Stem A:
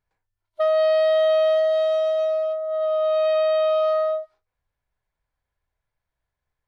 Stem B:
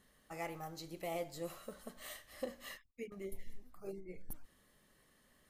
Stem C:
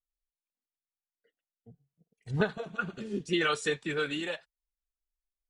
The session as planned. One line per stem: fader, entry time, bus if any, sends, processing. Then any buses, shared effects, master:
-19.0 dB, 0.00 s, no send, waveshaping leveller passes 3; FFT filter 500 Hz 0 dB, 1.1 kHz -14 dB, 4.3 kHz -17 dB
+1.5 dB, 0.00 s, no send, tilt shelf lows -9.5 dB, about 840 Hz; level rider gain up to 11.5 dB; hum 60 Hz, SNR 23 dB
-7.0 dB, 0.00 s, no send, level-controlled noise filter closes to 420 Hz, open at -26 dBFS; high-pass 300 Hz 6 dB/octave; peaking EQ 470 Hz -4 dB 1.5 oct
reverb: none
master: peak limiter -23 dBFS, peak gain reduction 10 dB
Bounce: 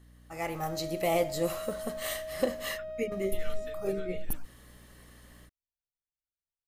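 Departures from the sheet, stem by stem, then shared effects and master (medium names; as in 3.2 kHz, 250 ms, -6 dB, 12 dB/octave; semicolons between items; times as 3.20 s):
stem B: missing tilt shelf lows -9.5 dB, about 840 Hz; stem C -7.0 dB -> -18.0 dB; master: missing peak limiter -23 dBFS, peak gain reduction 10 dB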